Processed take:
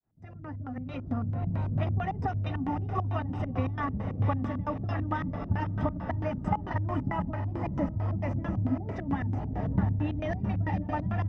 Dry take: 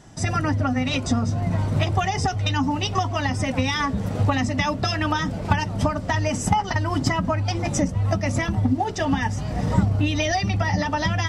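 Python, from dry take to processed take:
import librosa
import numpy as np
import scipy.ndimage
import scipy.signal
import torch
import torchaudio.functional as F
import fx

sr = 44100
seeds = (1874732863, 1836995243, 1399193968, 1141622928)

y = fx.fade_in_head(x, sr, length_s=1.46)
y = fx.echo_diffused(y, sr, ms=643, feedback_pct=51, wet_db=-7.5)
y = fx.filter_lfo_lowpass(y, sr, shape='square', hz=4.5, low_hz=250.0, high_hz=1500.0, q=0.79)
y = F.gain(torch.from_numpy(y), -7.5).numpy()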